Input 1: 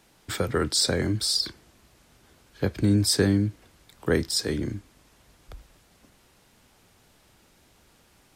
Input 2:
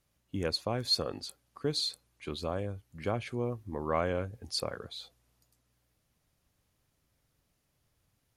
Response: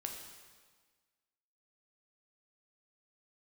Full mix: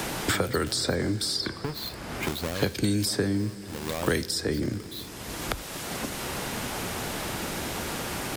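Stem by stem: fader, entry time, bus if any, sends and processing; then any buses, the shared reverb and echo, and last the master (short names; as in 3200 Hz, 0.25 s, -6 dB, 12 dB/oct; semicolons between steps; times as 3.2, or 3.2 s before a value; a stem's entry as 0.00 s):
-1.0 dB, 0.00 s, send -9 dB, low shelf 70 Hz -6.5 dB
-10.5 dB, 0.00 s, no send, half-waves squared off; compressor, threshold -30 dBFS, peak gain reduction 9 dB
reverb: on, RT60 1.5 s, pre-delay 5 ms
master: high shelf 7800 Hz +3.5 dB; three-band squash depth 100%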